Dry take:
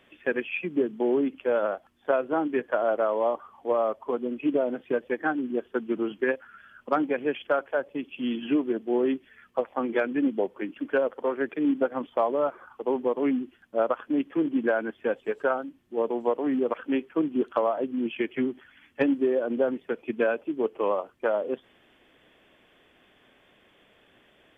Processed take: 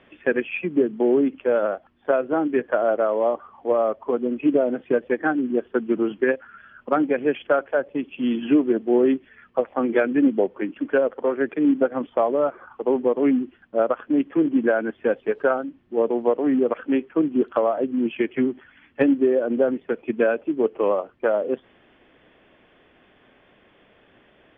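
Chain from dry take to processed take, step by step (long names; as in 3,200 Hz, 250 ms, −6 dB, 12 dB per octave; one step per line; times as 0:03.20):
dynamic equaliser 960 Hz, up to −5 dB, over −41 dBFS, Q 2.7
speech leveller 2 s
high-frequency loss of the air 310 metres
level +6 dB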